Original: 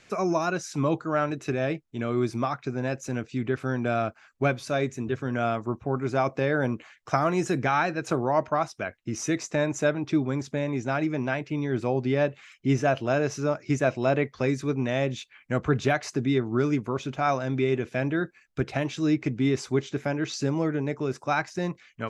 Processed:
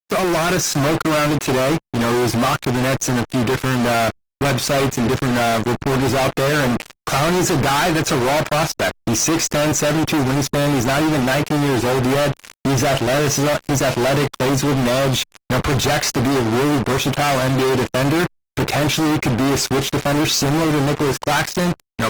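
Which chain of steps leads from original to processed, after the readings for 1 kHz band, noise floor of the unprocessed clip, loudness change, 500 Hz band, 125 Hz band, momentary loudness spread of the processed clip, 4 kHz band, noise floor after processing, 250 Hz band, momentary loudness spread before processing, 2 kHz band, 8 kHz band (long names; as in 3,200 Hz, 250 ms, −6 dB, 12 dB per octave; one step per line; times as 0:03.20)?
+9.5 dB, −60 dBFS, +9.5 dB, +8.0 dB, +9.0 dB, 3 LU, +18.5 dB, −67 dBFS, +8.5 dB, 6 LU, +10.0 dB, +18.5 dB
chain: fuzz pedal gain 46 dB, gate −43 dBFS
level −2 dB
Opus 20 kbit/s 48,000 Hz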